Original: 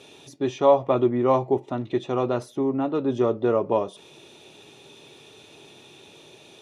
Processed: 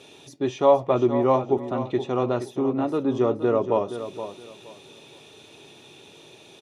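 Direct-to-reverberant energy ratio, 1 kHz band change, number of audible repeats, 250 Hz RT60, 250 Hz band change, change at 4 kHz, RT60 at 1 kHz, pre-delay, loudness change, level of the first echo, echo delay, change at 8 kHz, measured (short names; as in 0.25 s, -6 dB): none, +0.5 dB, 2, none, +0.5 dB, +0.5 dB, none, none, 0.0 dB, -11.0 dB, 0.471 s, n/a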